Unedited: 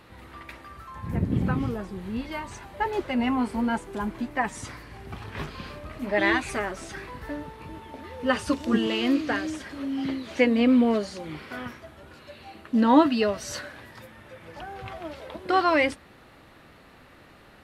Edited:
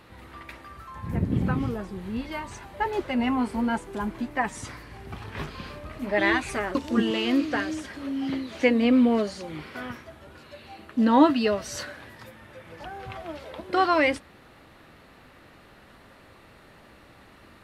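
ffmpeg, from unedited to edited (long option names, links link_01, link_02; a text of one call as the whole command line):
ffmpeg -i in.wav -filter_complex "[0:a]asplit=2[link_01][link_02];[link_01]atrim=end=6.752[link_03];[link_02]atrim=start=8.508[link_04];[link_03][link_04]acrossfade=duration=0.004:curve1=hsin:curve2=hsin" out.wav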